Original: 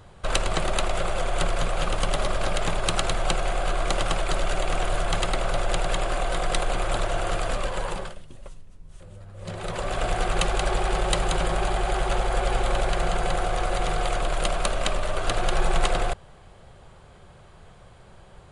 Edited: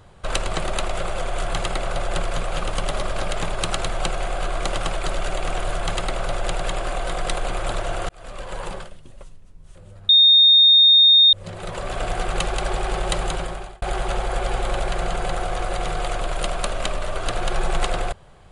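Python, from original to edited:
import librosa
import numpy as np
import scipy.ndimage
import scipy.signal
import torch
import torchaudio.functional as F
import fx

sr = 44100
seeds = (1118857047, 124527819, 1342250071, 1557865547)

y = fx.edit(x, sr, fx.duplicate(start_s=4.99, length_s=0.75, to_s=1.41),
    fx.fade_in_span(start_s=7.34, length_s=0.62),
    fx.insert_tone(at_s=9.34, length_s=1.24, hz=3680.0, db=-9.0),
    fx.fade_out_span(start_s=11.27, length_s=0.56), tone=tone)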